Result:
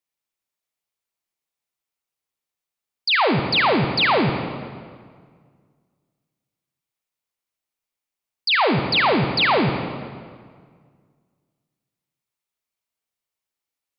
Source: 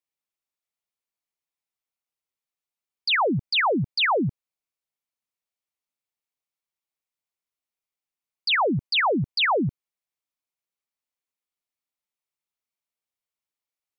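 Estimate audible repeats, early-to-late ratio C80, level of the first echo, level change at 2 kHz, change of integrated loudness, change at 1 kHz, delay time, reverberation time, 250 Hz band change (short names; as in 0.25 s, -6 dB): none, 7.0 dB, none, +4.0 dB, +4.0 dB, +4.5 dB, none, 1.8 s, +4.5 dB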